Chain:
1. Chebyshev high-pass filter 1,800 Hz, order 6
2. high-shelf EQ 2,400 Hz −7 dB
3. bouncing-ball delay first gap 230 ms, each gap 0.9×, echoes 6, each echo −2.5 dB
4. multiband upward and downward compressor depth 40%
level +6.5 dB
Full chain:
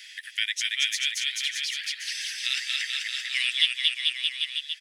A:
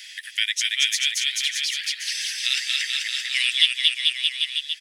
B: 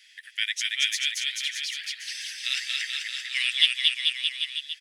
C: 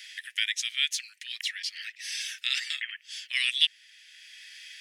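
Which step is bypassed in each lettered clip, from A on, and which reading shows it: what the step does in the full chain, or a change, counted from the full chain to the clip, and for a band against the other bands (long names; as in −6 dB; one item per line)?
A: 2, change in integrated loudness +4.5 LU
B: 4, change in crest factor +2.0 dB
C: 3, change in momentary loudness spread +11 LU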